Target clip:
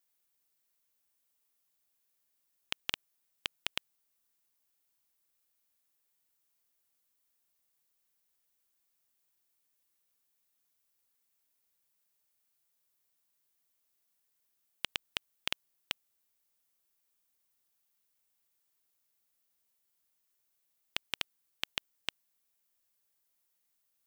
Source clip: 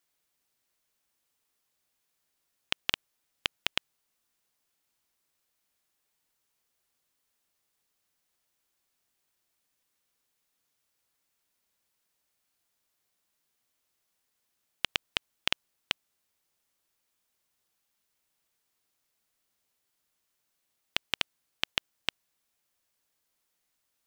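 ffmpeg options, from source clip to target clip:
-af "highshelf=f=9700:g=11,volume=0.473"

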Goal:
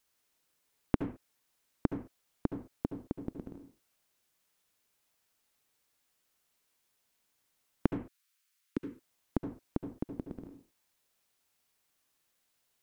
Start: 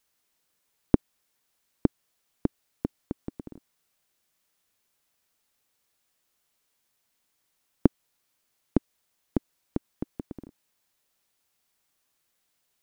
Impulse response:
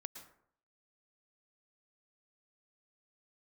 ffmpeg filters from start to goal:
-filter_complex "[0:a]asettb=1/sr,asplit=3[s0][s1][s2];[s0]atrim=end=7.864[s3];[s1]atrim=start=7.86:end=8.77,asetpts=PTS-STARTPTS,afade=t=in:d=0.004:c=qsin,afade=t=out:st=0.906:d=0.004:c=qsin,highpass=f=1300:w=0.5412,highpass=f=1300:w=1.3066[s4];[s2]atrim=start=8.766[s5];[s3][s4]acrossfade=d=0.004:c1=hsin:c2=qsin[s6];[s6][s5]acrossfade=d=0.004:c1=qsin:c2=hsin,acompressor=threshold=0.0501:ratio=2[s7];[1:a]atrim=start_sample=2205,afade=t=out:st=0.4:d=0.01,atrim=end_sample=18081,asetrate=70560,aresample=44100[s8];[s7][s8]afir=irnorm=-1:irlink=0,volume=2.24"

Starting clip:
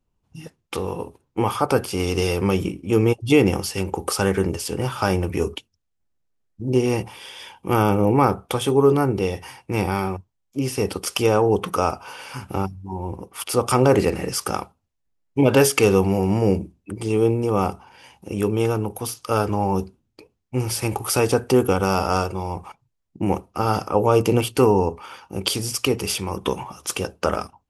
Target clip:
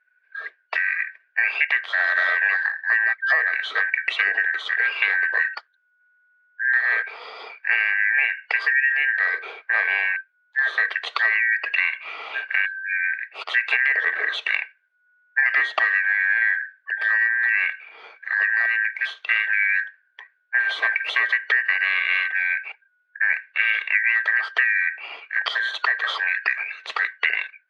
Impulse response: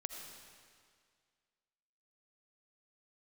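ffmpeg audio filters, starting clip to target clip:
-af "afftfilt=real='real(if(lt(b,272),68*(eq(floor(b/68),0)*1+eq(floor(b/68),1)*0+eq(floor(b/68),2)*3+eq(floor(b/68),3)*2)+mod(b,68),b),0)':imag='imag(if(lt(b,272),68*(eq(floor(b/68),0)*1+eq(floor(b/68),1)*0+eq(floor(b/68),2)*3+eq(floor(b/68),3)*2)+mod(b,68),b),0)':win_size=2048:overlap=0.75,acompressor=threshold=0.0891:ratio=8,highpass=f=390:w=0.5412,highpass=f=390:w=1.3066,equalizer=f=440:t=q:w=4:g=8,equalizer=f=640:t=q:w=4:g=8,equalizer=f=1100:t=q:w=4:g=5,equalizer=f=1500:t=q:w=4:g=5,equalizer=f=2200:t=q:w=4:g=6,equalizer=f=3300:t=q:w=4:g=4,lowpass=f=3800:w=0.5412,lowpass=f=3800:w=1.3066"

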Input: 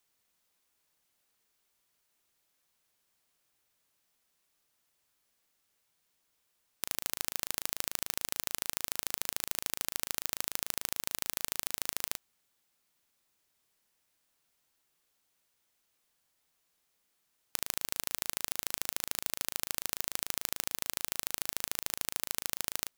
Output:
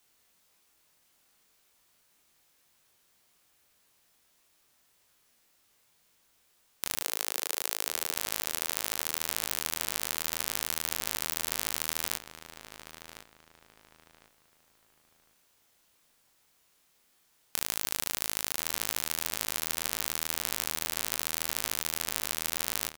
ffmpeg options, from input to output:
-filter_complex "[0:a]asettb=1/sr,asplit=3[s0][s1][s2];[s0]atrim=end=7.014[s3];[s1]atrim=start=7.01:end=8.12,asetpts=PTS-STARTPTS,afade=t=in:d=0.004:c=qsin,afade=t=out:st=1.106:d=0.004:c=qsin,lowshelf=f=360:t=q:w=1.5:g=-7.5[s4];[s2]atrim=start=8.116[s5];[s3][s4]acrossfade=d=0.004:c1=hsin:c2=qsin[s6];[s6][s5]acrossfade=d=0.004:c1=qsin:c2=hsin,acontrast=87,flanger=delay=20:depth=5.7:speed=1.8,asplit=2[s7][s8];[s8]adelay=1053,lowpass=f=2800:p=1,volume=0.355,asplit=2[s9][s10];[s10]adelay=1053,lowpass=f=2800:p=1,volume=0.32,asplit=2[s11][s12];[s12]adelay=1053,lowpass=f=2800:p=1,volume=0.32,asplit=2[s13][s14];[s14]adelay=1053,lowpass=f=2800:p=1,volume=0.32[s15];[s7][s9][s11][s13][s15]amix=inputs=5:normalize=0,volume=1.68"

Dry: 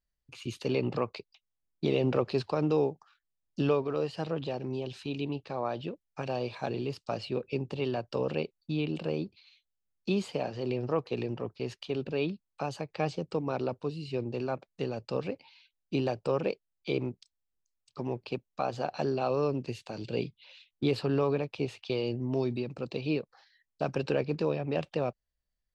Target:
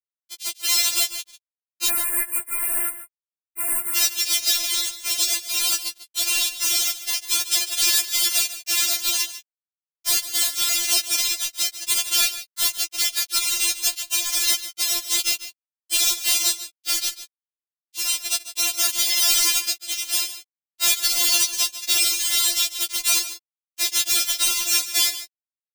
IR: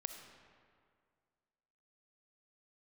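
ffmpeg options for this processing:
-filter_complex "[0:a]asplit=2[s0][s1];[s1]acompressor=threshold=0.00708:ratio=4,volume=1.06[s2];[s0][s2]amix=inputs=2:normalize=0,acrusher=samples=34:mix=1:aa=0.000001:lfo=1:lforange=34:lforate=0.46,aeval=exprs='0.133*(abs(mod(val(0)/0.133+3,4)-2)-1)':c=same,highpass=f=1600:t=q:w=3.6,acrusher=bits=4:mix=0:aa=0.000001,aexciter=amount=14.6:drive=7.3:freq=2700,asoftclip=type=tanh:threshold=0.251,asplit=3[s3][s4][s5];[s3]afade=t=out:st=1.87:d=0.02[s6];[s4]asuperstop=centerf=4600:order=12:qfactor=0.74,afade=t=in:st=1.87:d=0.02,afade=t=out:st=3.95:d=0.02[s7];[s5]afade=t=in:st=3.95:d=0.02[s8];[s6][s7][s8]amix=inputs=3:normalize=0,asplit=2[s9][s10];[s10]aecho=0:1:147:0.211[s11];[s9][s11]amix=inputs=2:normalize=0,afftfilt=real='re*4*eq(mod(b,16),0)':imag='im*4*eq(mod(b,16),0)':win_size=2048:overlap=0.75"

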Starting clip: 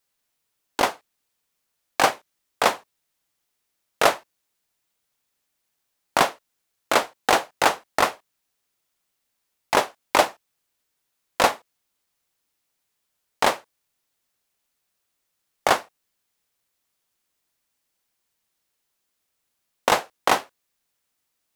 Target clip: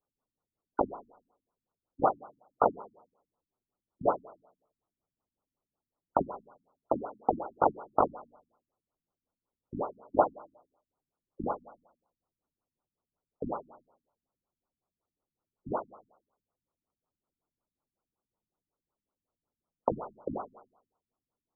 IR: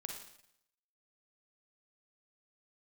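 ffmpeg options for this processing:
-filter_complex "[0:a]alimiter=limit=0.473:level=0:latency=1:release=38,asplit=2[s0][s1];[1:a]atrim=start_sample=2205,lowpass=8200[s2];[s1][s2]afir=irnorm=-1:irlink=0,volume=0.501[s3];[s0][s3]amix=inputs=2:normalize=0,afftfilt=real='re*lt(b*sr/1024,280*pow(1500/280,0.5+0.5*sin(2*PI*5.4*pts/sr)))':imag='im*lt(b*sr/1024,280*pow(1500/280,0.5+0.5*sin(2*PI*5.4*pts/sr)))':win_size=1024:overlap=0.75,volume=0.668"

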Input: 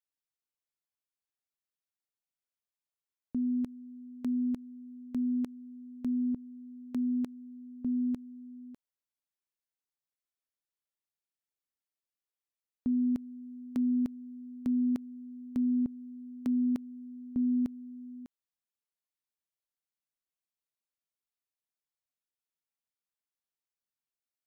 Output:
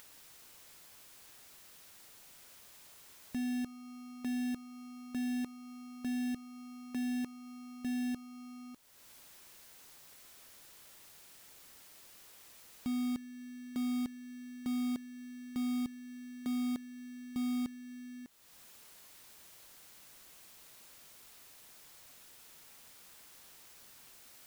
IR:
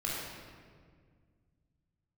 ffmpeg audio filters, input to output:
-af "aeval=exprs='val(0)+0.5*0.00282*sgn(val(0))':c=same,acrusher=bits=2:mode=log:mix=0:aa=0.000001,acompressor=mode=upward:threshold=0.0126:ratio=2.5,volume=0.473"

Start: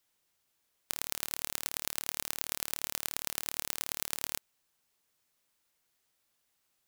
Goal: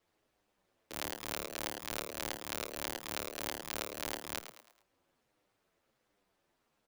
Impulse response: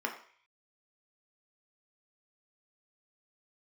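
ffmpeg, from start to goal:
-filter_complex "[0:a]lowpass=f=1100:p=1,equalizer=f=440:t=o:w=0.77:g=6.5,aeval=exprs='(mod(21.1*val(0)+1,2)-1)/21.1':c=same,aeval=exprs='val(0)*sin(2*PI*110*n/s)':c=same,asplit=2[s0][s1];[s1]asplit=4[s2][s3][s4][s5];[s2]adelay=108,afreqshift=110,volume=0.282[s6];[s3]adelay=216,afreqshift=220,volume=0.116[s7];[s4]adelay=324,afreqshift=330,volume=0.0473[s8];[s5]adelay=432,afreqshift=440,volume=0.0195[s9];[s6][s7][s8][s9]amix=inputs=4:normalize=0[s10];[s0][s10]amix=inputs=2:normalize=0,asplit=2[s11][s12];[s12]adelay=8.6,afreqshift=-1.4[s13];[s11][s13]amix=inputs=2:normalize=1,volume=5.01"

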